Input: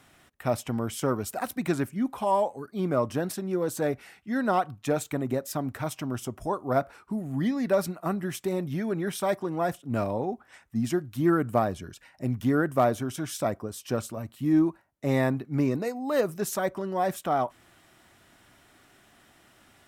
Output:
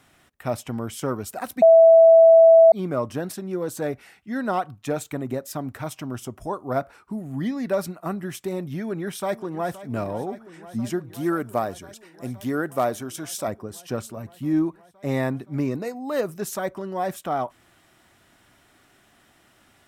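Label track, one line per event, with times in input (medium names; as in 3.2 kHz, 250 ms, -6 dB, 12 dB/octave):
1.620000	2.720000	bleep 657 Hz -8 dBFS
8.790000	9.710000	echo throw 520 ms, feedback 85%, level -15.5 dB
11.140000	13.480000	tone controls bass -6 dB, treble +5 dB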